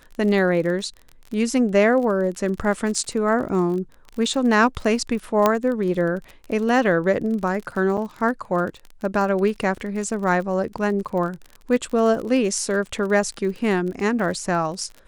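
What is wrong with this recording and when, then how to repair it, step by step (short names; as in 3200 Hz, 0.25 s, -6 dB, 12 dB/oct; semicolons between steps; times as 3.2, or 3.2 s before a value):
crackle 38/s -29 dBFS
5.46 pop -4 dBFS
7.97–7.98 gap 7.1 ms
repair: de-click; interpolate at 7.97, 7.1 ms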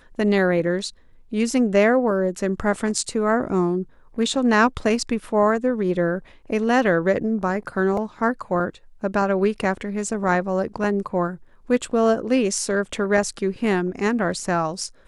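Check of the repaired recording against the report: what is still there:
none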